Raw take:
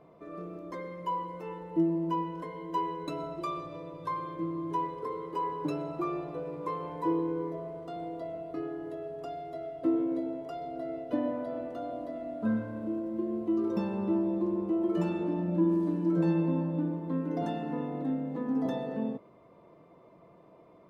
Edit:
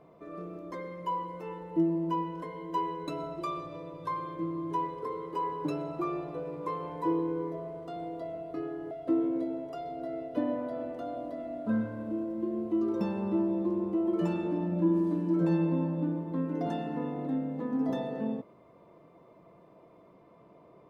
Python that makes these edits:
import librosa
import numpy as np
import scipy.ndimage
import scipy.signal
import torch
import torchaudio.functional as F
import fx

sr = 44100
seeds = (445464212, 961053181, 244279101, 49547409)

y = fx.edit(x, sr, fx.cut(start_s=8.91, length_s=0.76), tone=tone)